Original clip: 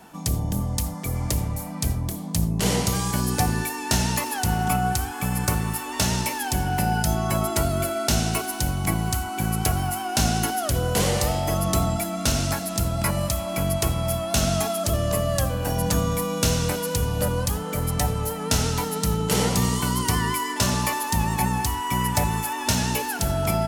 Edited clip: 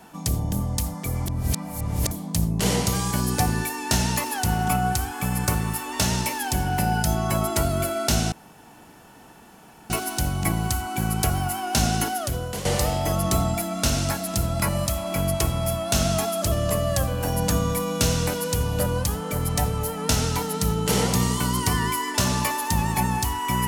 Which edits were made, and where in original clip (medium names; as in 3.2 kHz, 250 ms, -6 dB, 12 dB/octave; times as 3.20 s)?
1.26–2.11 s: reverse
8.32 s: insert room tone 1.58 s
10.46–11.07 s: fade out, to -12.5 dB